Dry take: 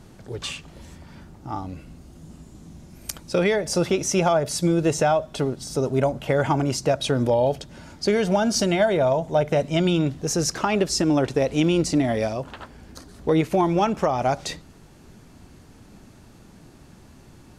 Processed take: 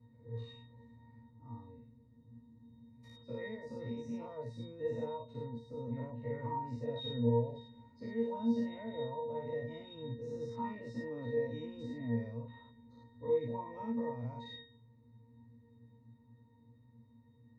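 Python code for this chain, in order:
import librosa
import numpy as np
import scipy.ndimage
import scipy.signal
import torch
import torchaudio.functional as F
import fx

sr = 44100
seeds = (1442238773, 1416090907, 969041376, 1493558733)

y = fx.spec_dilate(x, sr, span_ms=120)
y = fx.octave_resonator(y, sr, note='A#', decay_s=0.4)
y = y * librosa.db_to_amplitude(-4.5)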